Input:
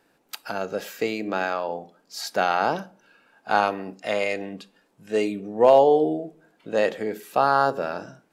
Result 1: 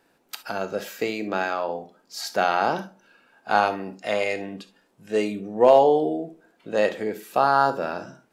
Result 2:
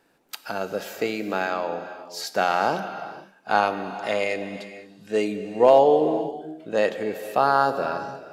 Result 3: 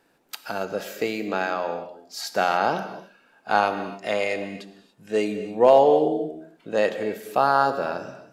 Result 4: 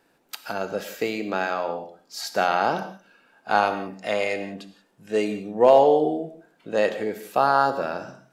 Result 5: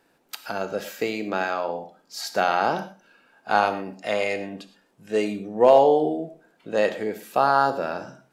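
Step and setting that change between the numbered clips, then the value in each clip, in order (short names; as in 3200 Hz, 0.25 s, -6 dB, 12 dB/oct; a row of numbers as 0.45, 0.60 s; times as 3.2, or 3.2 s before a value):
non-linear reverb, gate: 90, 530, 310, 200, 140 ms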